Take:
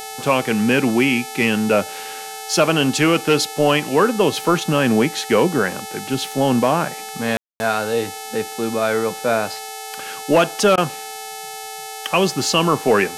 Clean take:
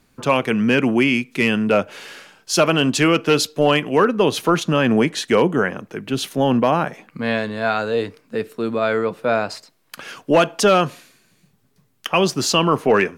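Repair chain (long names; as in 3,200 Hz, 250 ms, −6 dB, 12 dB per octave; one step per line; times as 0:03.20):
hum removal 434.4 Hz, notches 30
notch filter 780 Hz, Q 30
ambience match 0:07.37–0:07.60
repair the gap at 0:10.76, 15 ms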